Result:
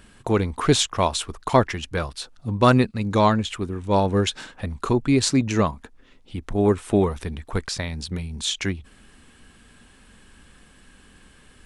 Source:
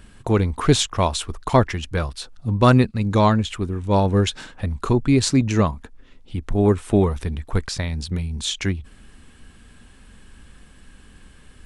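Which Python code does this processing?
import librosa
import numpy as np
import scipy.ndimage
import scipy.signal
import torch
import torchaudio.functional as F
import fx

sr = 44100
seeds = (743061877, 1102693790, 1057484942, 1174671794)

y = fx.low_shelf(x, sr, hz=140.0, db=-8.0)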